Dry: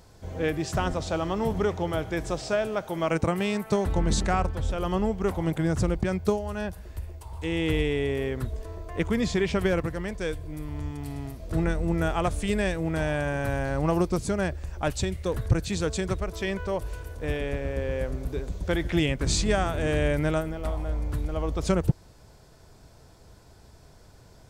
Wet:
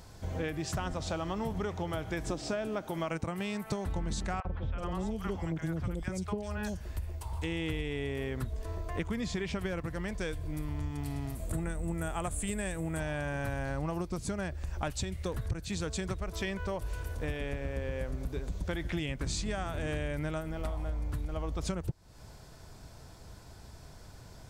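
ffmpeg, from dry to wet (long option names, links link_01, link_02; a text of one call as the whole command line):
ffmpeg -i in.wav -filter_complex "[0:a]asettb=1/sr,asplit=3[link_01][link_02][link_03];[link_01]atrim=end=2.274[link_04];[link_02]atrim=start=2.27:end=2.91,asetpts=PTS-STARTPTS,afade=type=in:duration=0.004:curve=qsin,afade=type=out:start_time=0.636:duration=0.004:curve=qsin,equalizer=frequency=290:width_type=o:width=0.77:gain=11.5[link_05];[link_03]atrim=start=2.906[link_06];[link_04][link_05]acrossfade=duration=0.004:curve1=hsin:curve2=qsin[link_07];[link_07][link_06]acrossfade=duration=0.004:curve1=qsin:curve2=hsin,asettb=1/sr,asplit=3[link_08][link_09][link_10];[link_08]atrim=end=4.404[link_11];[link_09]atrim=start=4.4:end=6.81,asetpts=PTS-STARTPTS,afade=type=in:duration=0.004:curve=qsin,afade=type=out:start_time=2.406:duration=0.004:curve=qsin,acrossover=split=720|3200[link_12][link_13][link_14];[link_12]adelay=50[link_15];[link_14]adelay=380[link_16];[link_15][link_13][link_16]amix=inputs=3:normalize=0,atrim=end_sample=106281[link_17];[link_10]atrim=start=6.806[link_18];[link_11][link_17]acrossfade=duration=0.004:curve1=hsin:curve2=qsin[link_19];[link_19][link_18]acrossfade=duration=0.004:curve1=qsin:curve2=hsin,asettb=1/sr,asplit=3[link_20][link_21][link_22];[link_20]atrim=end=11.354[link_23];[link_21]atrim=start=11.35:end=13,asetpts=PTS-STARTPTS,afade=type=in:duration=0.004:curve=qsin,afade=type=out:start_time=1.646:duration=0.004:curve=qsin,highshelf=frequency=6600:width_type=q:width=3:gain=7[link_24];[link_22]atrim=start=12.996[link_25];[link_23][link_24]acrossfade=duration=0.004:curve1=hsin:curve2=qsin[link_26];[link_26][link_25]acrossfade=duration=0.004:curve1=qsin:curve2=hsin,equalizer=frequency=440:width=1.4:gain=-4,acompressor=threshold=-34dB:ratio=6,volume=2.5dB" out.wav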